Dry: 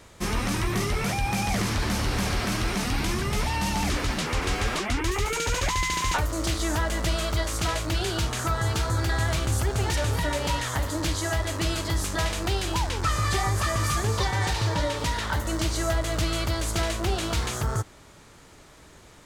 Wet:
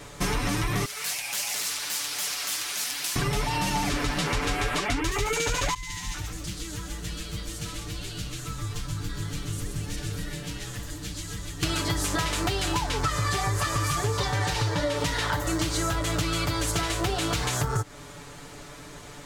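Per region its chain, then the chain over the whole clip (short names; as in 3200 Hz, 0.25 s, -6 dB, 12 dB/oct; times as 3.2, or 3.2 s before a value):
0.85–3.16 differentiator + Doppler distortion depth 0.46 ms
5.74–11.63 passive tone stack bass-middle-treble 6-0-2 + frequency-shifting echo 0.128 s, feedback 51%, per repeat -130 Hz, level -4.5 dB
whole clip: comb 6.9 ms, depth 80%; compressor, threshold -29 dBFS; gain +5.5 dB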